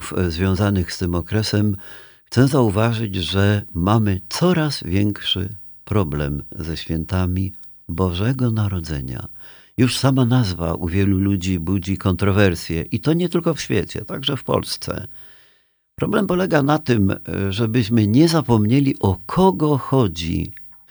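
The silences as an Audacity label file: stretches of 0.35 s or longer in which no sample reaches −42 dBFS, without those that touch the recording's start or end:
15.470000	15.980000	silence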